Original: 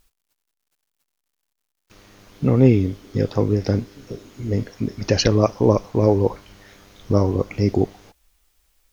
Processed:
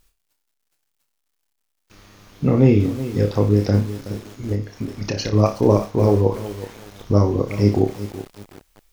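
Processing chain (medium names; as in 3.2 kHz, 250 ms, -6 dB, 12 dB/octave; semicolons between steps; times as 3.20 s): 4.52–5.33 s: compression 6:1, threshold -23 dBFS, peak gain reduction 11 dB; on a send: flutter echo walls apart 5 m, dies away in 0.27 s; on the sum: bit-crushed delay 373 ms, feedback 35%, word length 5-bit, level -13 dB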